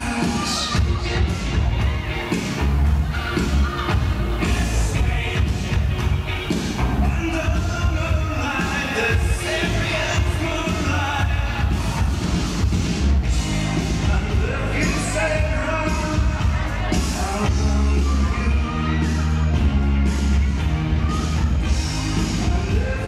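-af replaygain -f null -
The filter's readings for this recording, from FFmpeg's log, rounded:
track_gain = +5.4 dB
track_peak = 0.242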